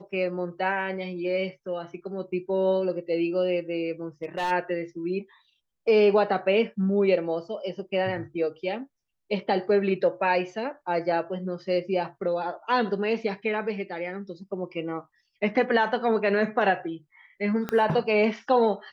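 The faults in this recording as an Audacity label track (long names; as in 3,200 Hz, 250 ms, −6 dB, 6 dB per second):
4.230000	4.520000	clipping −24 dBFS
17.690000	17.690000	click −15 dBFS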